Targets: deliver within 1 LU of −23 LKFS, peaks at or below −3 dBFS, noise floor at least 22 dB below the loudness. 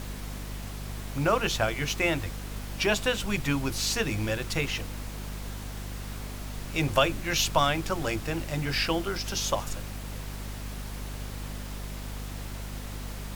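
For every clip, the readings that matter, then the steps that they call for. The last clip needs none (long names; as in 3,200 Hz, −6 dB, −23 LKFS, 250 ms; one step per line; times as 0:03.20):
mains hum 50 Hz; hum harmonics up to 250 Hz; level of the hum −35 dBFS; background noise floor −38 dBFS; target noise floor −52 dBFS; integrated loudness −30.0 LKFS; sample peak −9.0 dBFS; target loudness −23.0 LKFS
→ hum removal 50 Hz, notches 5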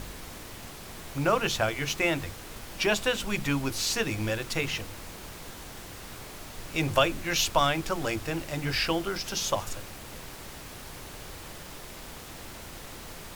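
mains hum none found; background noise floor −44 dBFS; target noise floor −51 dBFS
→ noise reduction from a noise print 7 dB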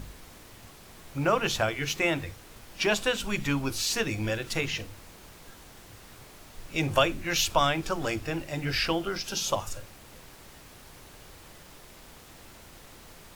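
background noise floor −51 dBFS; integrated loudness −28.0 LKFS; sample peak −9.0 dBFS; target loudness −23.0 LKFS
→ level +5 dB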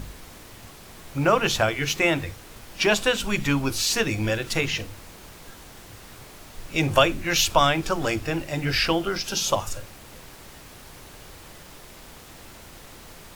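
integrated loudness −23.0 LKFS; sample peak −4.0 dBFS; background noise floor −46 dBFS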